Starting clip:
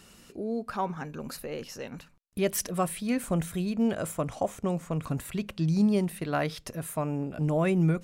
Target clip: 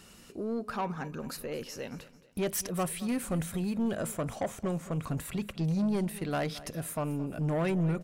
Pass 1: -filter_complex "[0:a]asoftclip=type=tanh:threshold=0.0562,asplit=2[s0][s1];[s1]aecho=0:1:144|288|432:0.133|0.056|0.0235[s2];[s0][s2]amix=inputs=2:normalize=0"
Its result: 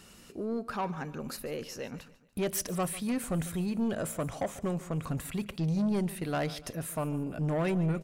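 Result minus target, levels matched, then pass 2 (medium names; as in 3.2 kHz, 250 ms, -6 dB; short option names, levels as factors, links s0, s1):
echo 77 ms early
-filter_complex "[0:a]asoftclip=type=tanh:threshold=0.0562,asplit=2[s0][s1];[s1]aecho=0:1:221|442|663:0.133|0.056|0.0235[s2];[s0][s2]amix=inputs=2:normalize=0"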